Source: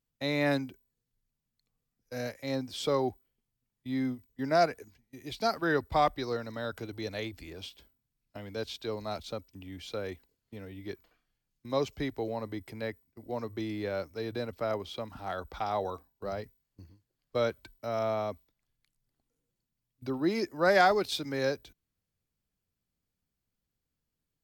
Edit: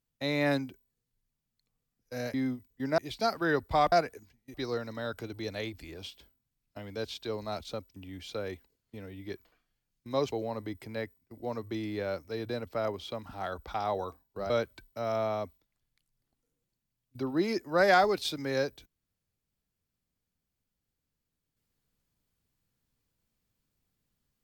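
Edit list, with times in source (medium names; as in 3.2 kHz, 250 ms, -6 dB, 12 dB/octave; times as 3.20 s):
2.34–3.93 s: delete
4.57–5.19 s: move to 6.13 s
11.91–12.18 s: delete
16.36–17.37 s: delete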